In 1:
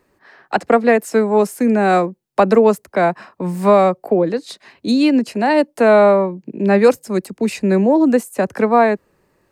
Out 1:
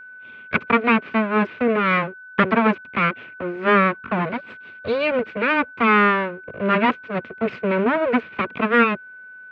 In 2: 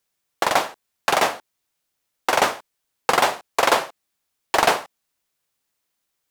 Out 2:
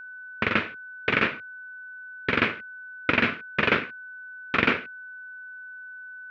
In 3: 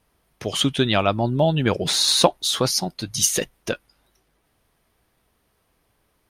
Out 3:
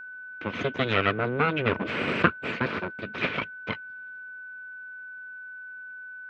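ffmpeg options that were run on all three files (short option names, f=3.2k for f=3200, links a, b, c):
-af "aeval=exprs='abs(val(0))':c=same,highpass=f=100:w=0.5412,highpass=f=100:w=1.3066,equalizer=f=130:t=q:w=4:g=-5,equalizer=f=230:t=q:w=4:g=5,equalizer=f=450:t=q:w=4:g=4,equalizer=f=800:t=q:w=4:g=-8,equalizer=f=1.4k:t=q:w=4:g=4,equalizer=f=2.4k:t=q:w=4:g=7,lowpass=f=3k:w=0.5412,lowpass=f=3k:w=1.3066,aeval=exprs='val(0)+0.0141*sin(2*PI*1500*n/s)':c=same,volume=-1.5dB"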